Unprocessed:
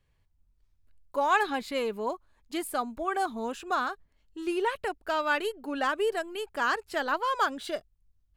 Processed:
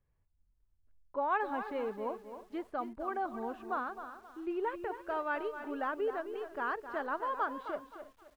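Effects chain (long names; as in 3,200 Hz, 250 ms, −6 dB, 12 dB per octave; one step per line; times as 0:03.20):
low-pass filter 1,500 Hz 12 dB per octave
single-tap delay 320 ms −19.5 dB
feedback echo at a low word length 262 ms, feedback 35%, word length 9 bits, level −10 dB
level −6 dB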